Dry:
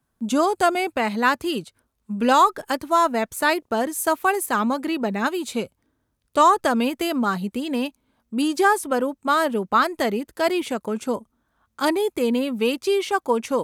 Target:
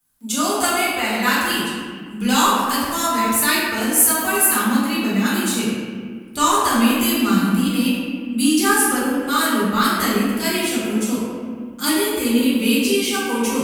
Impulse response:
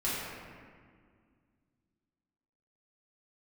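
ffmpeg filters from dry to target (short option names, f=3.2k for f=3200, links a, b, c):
-filter_complex "[0:a]asubboost=boost=6:cutoff=230,crystalizer=i=10:c=0[a];[1:a]atrim=start_sample=2205,asetrate=48510,aresample=44100[b];[a][b]afir=irnorm=-1:irlink=0,volume=-11dB"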